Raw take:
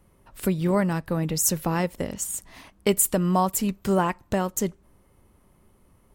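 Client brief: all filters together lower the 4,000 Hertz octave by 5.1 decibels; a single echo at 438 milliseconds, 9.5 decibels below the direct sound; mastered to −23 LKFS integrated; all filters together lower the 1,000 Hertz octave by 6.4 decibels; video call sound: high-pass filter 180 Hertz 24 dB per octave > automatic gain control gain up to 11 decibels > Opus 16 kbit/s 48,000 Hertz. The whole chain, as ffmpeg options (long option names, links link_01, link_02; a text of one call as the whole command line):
ffmpeg -i in.wav -af "highpass=frequency=180:width=0.5412,highpass=frequency=180:width=1.3066,equalizer=frequency=1000:width_type=o:gain=-8,equalizer=frequency=4000:width_type=o:gain=-7.5,aecho=1:1:438:0.335,dynaudnorm=maxgain=11dB,volume=4.5dB" -ar 48000 -c:a libopus -b:a 16k out.opus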